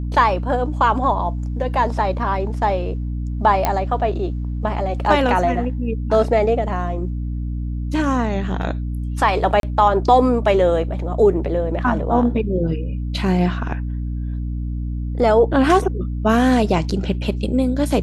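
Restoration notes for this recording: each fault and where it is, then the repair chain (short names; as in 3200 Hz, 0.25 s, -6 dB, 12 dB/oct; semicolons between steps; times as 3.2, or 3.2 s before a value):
hum 60 Hz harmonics 5 -24 dBFS
3.65 pop -4 dBFS
9.6–9.63 gap 32 ms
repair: de-click; de-hum 60 Hz, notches 5; interpolate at 9.6, 32 ms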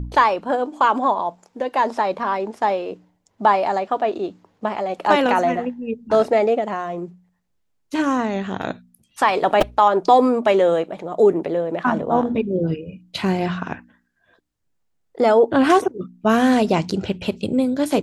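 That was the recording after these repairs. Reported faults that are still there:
none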